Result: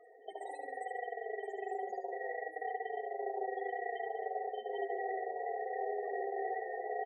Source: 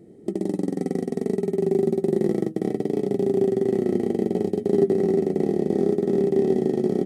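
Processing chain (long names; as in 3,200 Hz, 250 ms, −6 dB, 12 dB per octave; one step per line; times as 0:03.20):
high-pass filter 800 Hz 24 dB per octave
comb filter 4.2 ms, depth 63%
brickwall limiter −38.5 dBFS, peak gain reduction 10.5 dB
spectral peaks only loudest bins 16
flutter between parallel walls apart 12 metres, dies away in 0.43 s
level +11.5 dB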